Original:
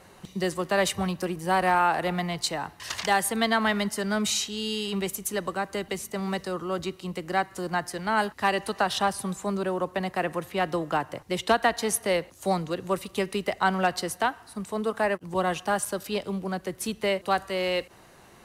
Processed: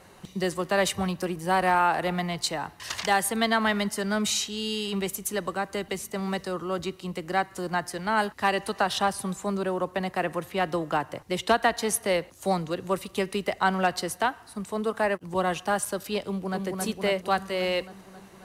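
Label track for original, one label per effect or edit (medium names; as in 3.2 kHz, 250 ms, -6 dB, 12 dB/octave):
16.240000	16.660000	echo throw 270 ms, feedback 70%, level -3 dB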